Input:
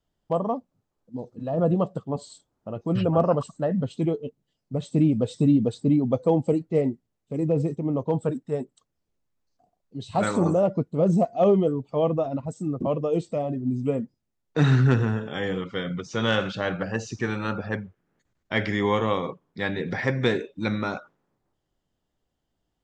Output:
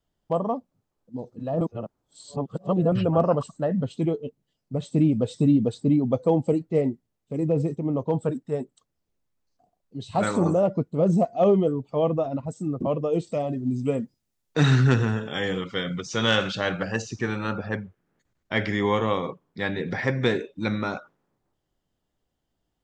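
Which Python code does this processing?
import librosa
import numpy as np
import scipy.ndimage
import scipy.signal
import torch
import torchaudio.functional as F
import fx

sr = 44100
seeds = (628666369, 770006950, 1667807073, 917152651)

y = fx.high_shelf(x, sr, hz=2600.0, db=8.5, at=(13.27, 17.02))
y = fx.edit(y, sr, fx.reverse_span(start_s=1.61, length_s=1.31), tone=tone)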